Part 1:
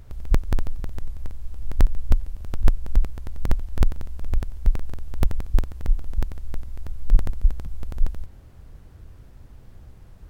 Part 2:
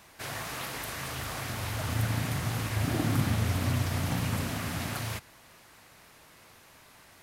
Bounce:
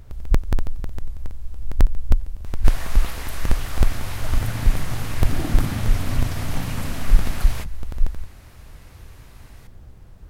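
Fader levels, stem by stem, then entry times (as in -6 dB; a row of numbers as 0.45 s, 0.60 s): +1.5 dB, +1.5 dB; 0.00 s, 2.45 s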